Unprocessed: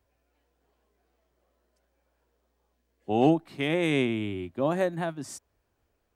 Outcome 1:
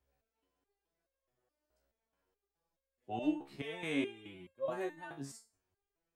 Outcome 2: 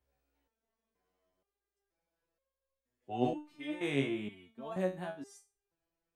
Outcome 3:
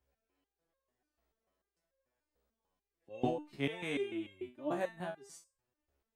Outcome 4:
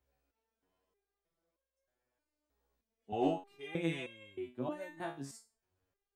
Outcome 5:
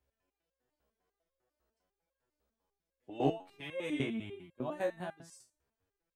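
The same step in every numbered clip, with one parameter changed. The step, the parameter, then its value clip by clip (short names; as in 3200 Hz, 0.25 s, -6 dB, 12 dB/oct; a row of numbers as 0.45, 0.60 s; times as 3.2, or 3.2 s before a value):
stepped resonator, rate: 4.7, 2.1, 6.8, 3.2, 10 Hz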